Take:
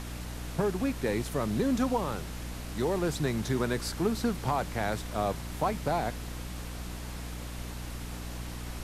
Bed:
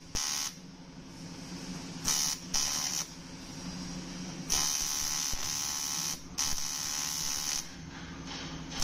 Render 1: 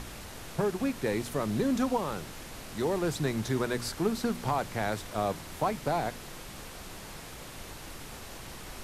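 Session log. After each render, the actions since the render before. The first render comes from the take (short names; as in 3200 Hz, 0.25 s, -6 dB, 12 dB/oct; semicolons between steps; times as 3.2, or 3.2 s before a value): de-hum 60 Hz, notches 5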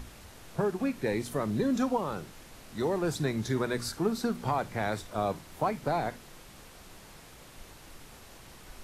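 noise print and reduce 7 dB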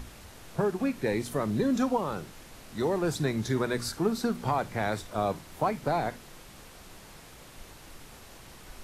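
gain +1.5 dB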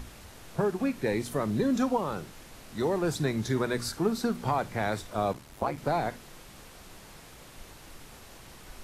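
5.32–5.76 ring modulator 28 Hz -> 79 Hz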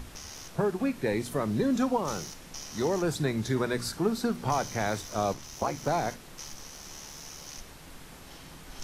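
add bed -12 dB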